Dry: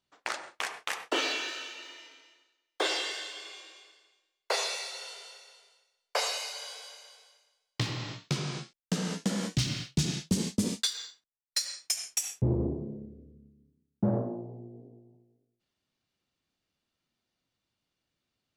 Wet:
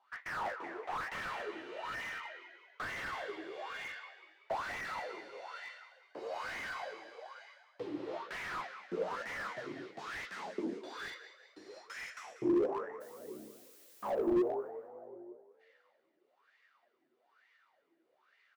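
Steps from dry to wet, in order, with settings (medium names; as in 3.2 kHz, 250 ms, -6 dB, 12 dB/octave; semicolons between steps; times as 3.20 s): compression, threshold -29 dBFS, peak gain reduction 7.5 dB; overdrive pedal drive 34 dB, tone 6.3 kHz, clips at -16.5 dBFS; wah-wah 1.1 Hz 320–2000 Hz, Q 10; 13.00–14.11 s: added noise blue -62 dBFS; flange 0.41 Hz, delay 7.5 ms, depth 6.2 ms, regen -23%; frequency-shifting echo 190 ms, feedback 46%, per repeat +47 Hz, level -13 dB; slew-rate limiter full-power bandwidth 9 Hz; trim +6.5 dB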